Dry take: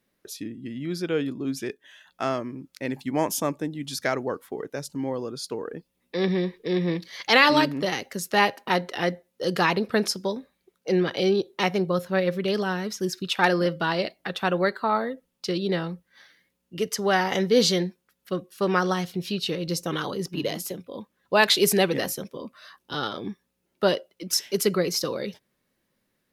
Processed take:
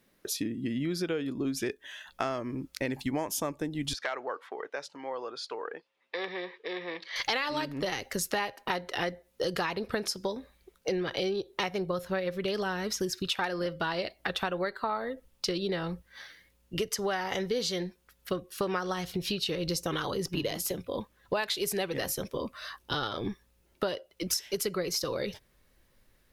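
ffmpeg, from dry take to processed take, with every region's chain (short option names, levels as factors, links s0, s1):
-filter_complex "[0:a]asettb=1/sr,asplit=3[s0][s1][s2];[s0]atrim=end=3.934[s3];[s1]atrim=start=3.93:end=7.16,asetpts=PTS-STARTPTS,afade=t=in:d=0.004:c=qsin,afade=t=out:st=3.226:d=0.004:c=qsin,acompressor=threshold=0.0251:ratio=2:attack=3.2:release=140:knee=1:detection=peak,aeval=exprs='0.075*(abs(mod(val(0)/0.075+3,4)-2)-1)':c=same,highpass=670,lowpass=3100[s4];[s2]atrim=start=7.156[s5];[s3][s4]acrossfade=d=0.004:c1=hsin:c2=qsin[s6];[s6][s5]acrossfade=d=0.004:c1=qsin:c2=hsin,asubboost=boost=10:cutoff=59,acompressor=threshold=0.02:ratio=10,volume=2"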